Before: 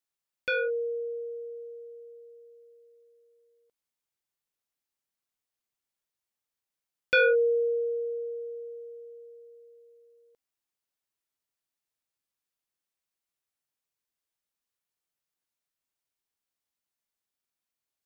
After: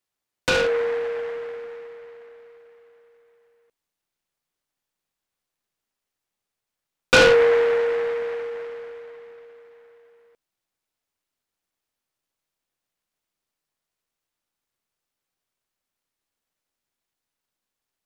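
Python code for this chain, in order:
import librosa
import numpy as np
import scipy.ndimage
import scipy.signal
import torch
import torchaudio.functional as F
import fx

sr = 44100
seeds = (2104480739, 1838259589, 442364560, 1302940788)

p1 = fx.backlash(x, sr, play_db=-37.5)
p2 = x + (p1 * librosa.db_to_amplitude(-8.5))
p3 = fx.noise_mod_delay(p2, sr, seeds[0], noise_hz=1200.0, depth_ms=0.086)
y = p3 * librosa.db_to_amplitude(5.0)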